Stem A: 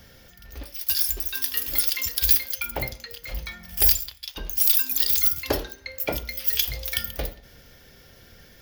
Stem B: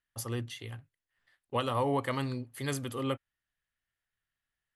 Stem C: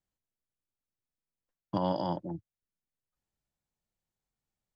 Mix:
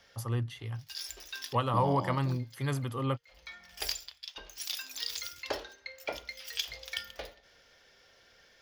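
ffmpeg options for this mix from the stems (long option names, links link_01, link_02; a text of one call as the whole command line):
ffmpeg -i stem1.wav -i stem2.wav -i stem3.wav -filter_complex "[0:a]acrossover=split=430 7500:gain=0.158 1 0.0794[link_01][link_02][link_03];[link_01][link_02][link_03]amix=inputs=3:normalize=0,volume=-6.5dB[link_04];[1:a]equalizer=frequency=125:width_type=o:width=1:gain=9,equalizer=frequency=1000:width_type=o:width=1:gain=7,equalizer=frequency=8000:width_type=o:width=1:gain=-5,volume=-3dB,asplit=2[link_05][link_06];[2:a]volume=-6dB[link_07];[link_06]apad=whole_len=379993[link_08];[link_04][link_08]sidechaincompress=threshold=-49dB:ratio=16:attack=7.4:release=271[link_09];[link_09][link_05][link_07]amix=inputs=3:normalize=0" out.wav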